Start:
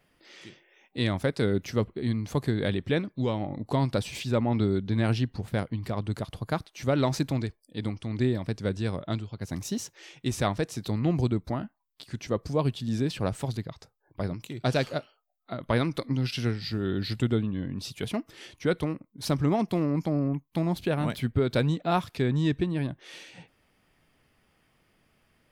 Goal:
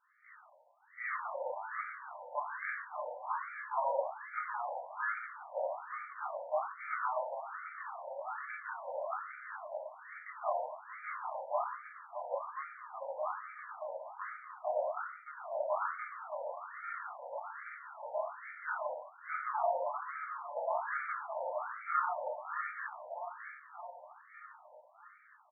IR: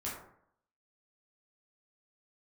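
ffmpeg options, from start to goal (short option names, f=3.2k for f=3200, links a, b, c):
-filter_complex "[0:a]highpass=150,bass=f=250:g=-10,treble=f=4k:g=-9,alimiter=limit=-18.5dB:level=0:latency=1:release=441,aeval=exprs='0.119*(cos(1*acos(clip(val(0)/0.119,-1,1)))-cos(1*PI/2))+0.0119*(cos(8*acos(clip(val(0)/0.119,-1,1)))-cos(8*PI/2))':c=same,aecho=1:1:617|1234|1851|2468|3085|3702|4319:0.398|0.231|0.134|0.0777|0.0451|0.0261|0.0152[a];[1:a]atrim=start_sample=2205,afade=t=out:st=0.31:d=0.01,atrim=end_sample=14112[b];[a][b]afir=irnorm=-1:irlink=0,afftfilt=real='re*between(b*sr/1024,690*pow(1700/690,0.5+0.5*sin(2*PI*1.2*pts/sr))/1.41,690*pow(1700/690,0.5+0.5*sin(2*PI*1.2*pts/sr))*1.41)':imag='im*between(b*sr/1024,690*pow(1700/690,0.5+0.5*sin(2*PI*1.2*pts/sr))/1.41,690*pow(1700/690,0.5+0.5*sin(2*PI*1.2*pts/sr))*1.41)':win_size=1024:overlap=0.75,volume=2dB"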